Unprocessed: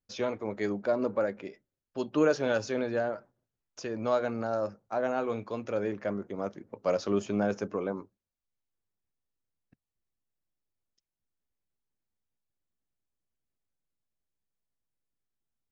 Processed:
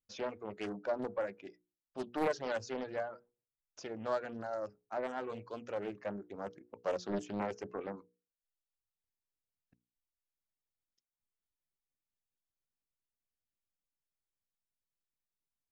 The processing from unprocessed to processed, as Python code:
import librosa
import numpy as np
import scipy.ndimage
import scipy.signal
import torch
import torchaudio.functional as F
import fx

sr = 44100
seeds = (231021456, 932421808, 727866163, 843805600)

y = fx.dereverb_blind(x, sr, rt60_s=0.88)
y = fx.hum_notches(y, sr, base_hz=60, count=8)
y = fx.doppler_dist(y, sr, depth_ms=0.7)
y = F.gain(torch.from_numpy(y), -6.5).numpy()